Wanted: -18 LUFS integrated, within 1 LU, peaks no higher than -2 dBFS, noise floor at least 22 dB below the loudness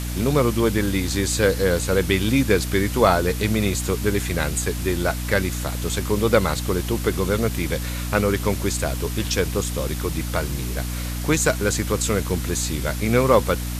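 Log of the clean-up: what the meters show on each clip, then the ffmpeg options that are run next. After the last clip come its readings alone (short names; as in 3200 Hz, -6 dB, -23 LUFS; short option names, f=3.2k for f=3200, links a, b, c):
hum 60 Hz; harmonics up to 300 Hz; hum level -25 dBFS; noise floor -28 dBFS; noise floor target -44 dBFS; loudness -22.0 LUFS; peak -2.5 dBFS; loudness target -18.0 LUFS
-> -af "bandreject=f=60:t=h:w=6,bandreject=f=120:t=h:w=6,bandreject=f=180:t=h:w=6,bandreject=f=240:t=h:w=6,bandreject=f=300:t=h:w=6"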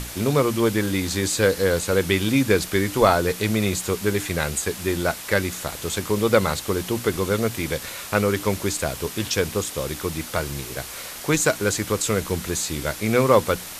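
hum none; noise floor -36 dBFS; noise floor target -45 dBFS
-> -af "afftdn=nr=9:nf=-36"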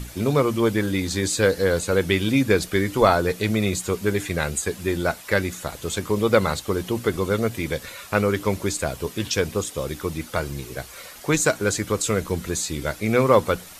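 noise floor -42 dBFS; noise floor target -45 dBFS
-> -af "afftdn=nr=6:nf=-42"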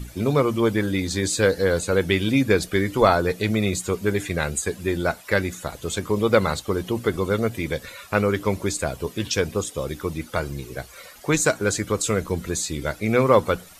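noise floor -46 dBFS; loudness -23.0 LUFS; peak -3.0 dBFS; loudness target -18.0 LUFS
-> -af "volume=5dB,alimiter=limit=-2dB:level=0:latency=1"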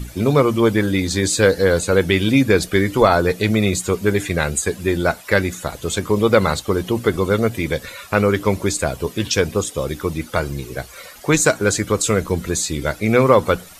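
loudness -18.5 LUFS; peak -2.0 dBFS; noise floor -41 dBFS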